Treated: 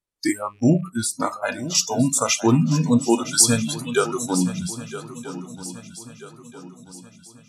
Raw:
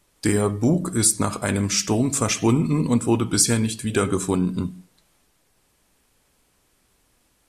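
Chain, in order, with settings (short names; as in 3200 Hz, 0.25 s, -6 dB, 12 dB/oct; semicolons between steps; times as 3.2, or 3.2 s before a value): rattling part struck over -30 dBFS, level -23 dBFS; spectral noise reduction 29 dB; 0.82–1.75 tone controls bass +1 dB, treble -12 dB; swung echo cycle 1.286 s, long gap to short 3:1, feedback 42%, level -14 dB; gain +3.5 dB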